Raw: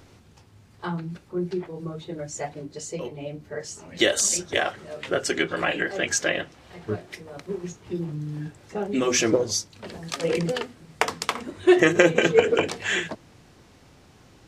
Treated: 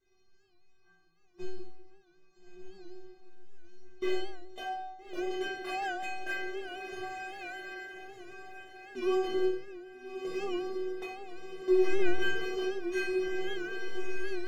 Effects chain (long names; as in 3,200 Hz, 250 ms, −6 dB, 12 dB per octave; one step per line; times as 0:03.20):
linear delta modulator 32 kbit/s, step −29 dBFS
gain on a spectral selection 0:04.49–0:05.40, 1,100–2,700 Hz −10 dB
noise gate −22 dBFS, range −23 dB
low-shelf EQ 480 Hz +5 dB
leveller curve on the samples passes 3
downward compressor 6 to 1, threshold −22 dBFS, peak gain reduction 16.5 dB
stiff-string resonator 370 Hz, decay 0.82 s, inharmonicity 0.008
feedback delay with all-pass diffusion 1,311 ms, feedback 40%, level −4 dB
rectangular room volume 200 cubic metres, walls mixed, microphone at 1.4 metres
wow of a warped record 78 rpm, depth 100 cents
level +7 dB